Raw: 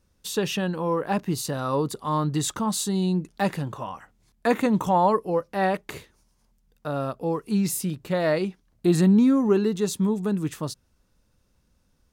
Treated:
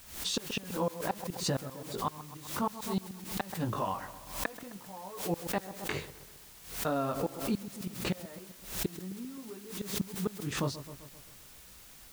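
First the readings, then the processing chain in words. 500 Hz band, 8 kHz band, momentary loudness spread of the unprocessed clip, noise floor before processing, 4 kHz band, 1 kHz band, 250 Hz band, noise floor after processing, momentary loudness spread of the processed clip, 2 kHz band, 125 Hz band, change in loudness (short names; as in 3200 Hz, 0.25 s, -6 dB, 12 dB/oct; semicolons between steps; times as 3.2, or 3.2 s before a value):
-12.0 dB, -7.0 dB, 12 LU, -67 dBFS, -3.5 dB, -10.5 dB, -14.0 dB, -53 dBFS, 14 LU, -7.5 dB, -11.0 dB, -11.5 dB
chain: chorus 0.61 Hz, delay 15 ms, depth 6.7 ms; flipped gate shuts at -21 dBFS, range -30 dB; LPF 6100 Hz; on a send: dark delay 0.13 s, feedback 54%, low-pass 1500 Hz, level -16 dB; on the sum: compressor 2.5:1, threshold -38 dBFS, peak gain reduction 8.5 dB; added noise white -61 dBFS; backwards sustainer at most 96 dB/s; gain +7 dB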